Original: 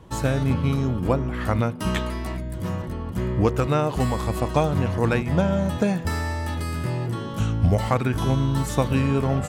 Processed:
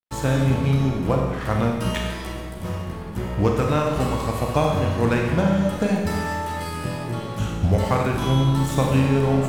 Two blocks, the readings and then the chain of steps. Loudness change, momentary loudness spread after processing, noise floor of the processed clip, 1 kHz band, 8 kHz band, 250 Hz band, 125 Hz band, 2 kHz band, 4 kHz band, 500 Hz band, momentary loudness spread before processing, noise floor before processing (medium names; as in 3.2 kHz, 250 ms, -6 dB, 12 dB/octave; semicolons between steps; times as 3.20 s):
+1.5 dB, 10 LU, -32 dBFS, +2.0 dB, +1.5 dB, +2.0 dB, +1.0 dB, +2.0 dB, +3.0 dB, +2.0 dB, 7 LU, -32 dBFS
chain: crossover distortion -38 dBFS; Schroeder reverb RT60 1.3 s, combs from 30 ms, DRR 0.5 dB